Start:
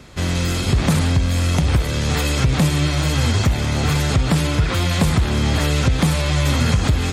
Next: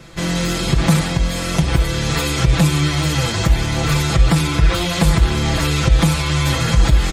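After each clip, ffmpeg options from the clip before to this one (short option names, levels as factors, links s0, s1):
-af "asubboost=boost=5:cutoff=64,aecho=1:1:6:0.9"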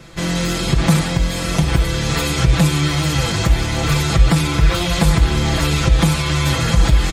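-af "aecho=1:1:713|1426|2139|2852:0.211|0.0909|0.0391|0.0168"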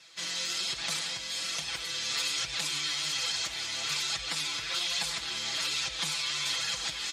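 -af "flanger=delay=1.1:depth=8.4:regen=53:speed=1.2:shape=sinusoidal,bandpass=f=4700:t=q:w=1.1:csg=0"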